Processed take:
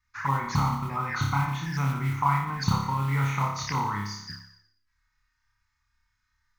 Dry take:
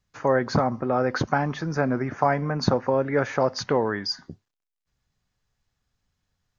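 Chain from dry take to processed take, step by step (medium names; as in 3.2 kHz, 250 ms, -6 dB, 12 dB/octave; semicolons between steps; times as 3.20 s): FFT filter 140 Hz 0 dB, 580 Hz -28 dB, 940 Hz -5 dB, 2 kHz 0 dB, 3.1 kHz -15 dB, 5.1 kHz +1 dB, 8.1 kHz -4 dB; on a send: flutter echo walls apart 5 m, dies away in 0.75 s; on the sum: touch-sensitive flanger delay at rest 3.3 ms, full sweep at -26.5 dBFS; modulation noise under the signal 26 dB; high-order bell 1.8 kHz +10 dB 2.4 oct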